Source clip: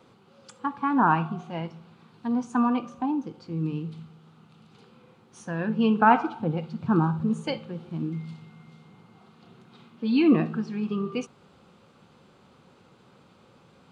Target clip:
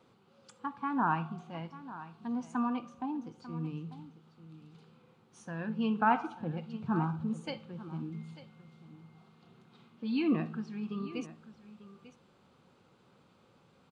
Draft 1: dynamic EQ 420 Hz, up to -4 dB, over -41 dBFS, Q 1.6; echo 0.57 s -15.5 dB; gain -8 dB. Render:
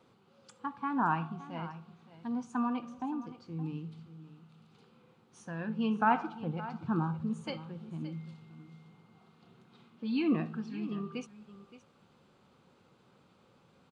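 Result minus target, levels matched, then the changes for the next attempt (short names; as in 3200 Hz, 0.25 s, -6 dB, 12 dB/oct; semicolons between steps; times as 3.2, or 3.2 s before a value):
echo 0.324 s early
change: echo 0.894 s -15.5 dB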